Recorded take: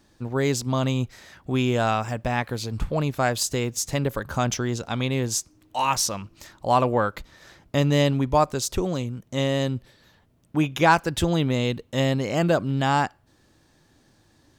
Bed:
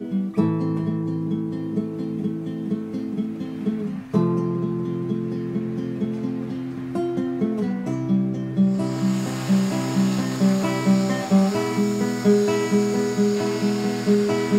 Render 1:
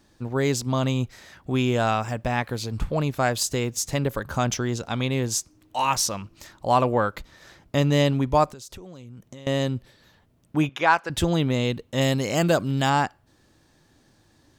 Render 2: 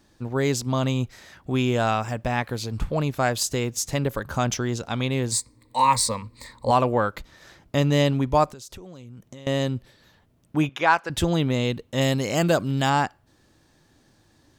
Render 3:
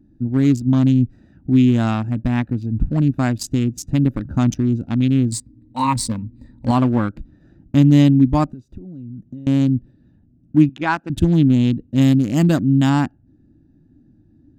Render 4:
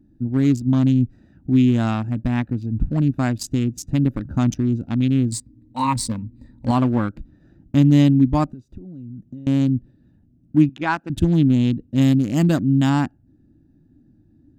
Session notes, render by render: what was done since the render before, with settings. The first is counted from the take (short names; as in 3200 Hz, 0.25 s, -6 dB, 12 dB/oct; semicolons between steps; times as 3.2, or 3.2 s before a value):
8.47–9.47 compressor 16:1, threshold -37 dBFS; 10.69–11.1 band-pass 1500 Hz, Q 0.55; 12.01–12.9 high shelf 4600 Hz +11 dB
5.31–6.71 ripple EQ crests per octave 0.97, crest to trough 15 dB
Wiener smoothing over 41 samples; resonant low shelf 360 Hz +7.5 dB, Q 3
gain -2 dB